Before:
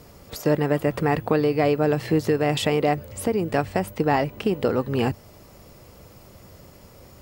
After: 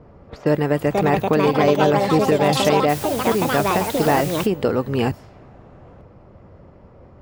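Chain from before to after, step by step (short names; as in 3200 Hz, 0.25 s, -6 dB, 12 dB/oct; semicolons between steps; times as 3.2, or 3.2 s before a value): low-pass opened by the level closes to 1100 Hz, open at -21 dBFS; echoes that change speed 0.602 s, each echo +5 st, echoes 2; 2.88–4.45 added noise white -36 dBFS; gain +2.5 dB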